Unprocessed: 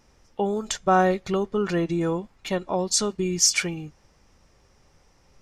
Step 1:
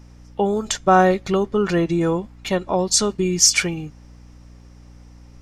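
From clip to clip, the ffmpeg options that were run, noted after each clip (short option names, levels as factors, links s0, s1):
-af "aeval=exprs='val(0)+0.00398*(sin(2*PI*60*n/s)+sin(2*PI*2*60*n/s)/2+sin(2*PI*3*60*n/s)/3+sin(2*PI*4*60*n/s)/4+sin(2*PI*5*60*n/s)/5)':c=same,volume=1.78"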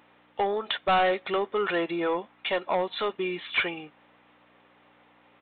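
-af "highpass=580,aresample=8000,asoftclip=type=tanh:threshold=0.1,aresample=44100,volume=1.19"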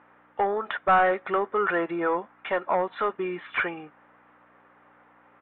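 -af "lowpass=f=1500:t=q:w=2"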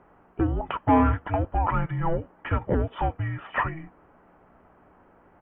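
-af "afreqshift=-480,volume=1.12"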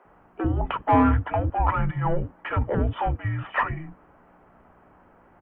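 -filter_complex "[0:a]acrossover=split=340[s0][s1];[s0]adelay=50[s2];[s2][s1]amix=inputs=2:normalize=0,aeval=exprs='0.335*(cos(1*acos(clip(val(0)/0.335,-1,1)))-cos(1*PI/2))+0.0106*(cos(2*acos(clip(val(0)/0.335,-1,1)))-cos(2*PI/2))+0.00944*(cos(4*acos(clip(val(0)/0.335,-1,1)))-cos(4*PI/2))':c=same,volume=1.26"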